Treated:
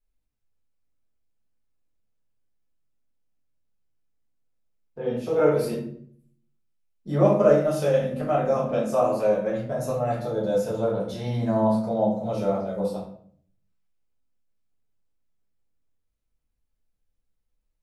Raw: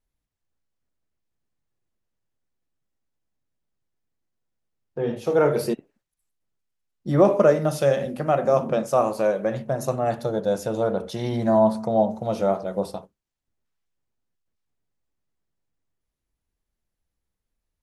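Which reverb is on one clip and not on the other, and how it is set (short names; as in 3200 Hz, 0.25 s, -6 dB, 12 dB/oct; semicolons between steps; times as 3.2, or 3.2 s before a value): shoebox room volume 73 m³, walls mixed, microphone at 1.5 m; gain -9.5 dB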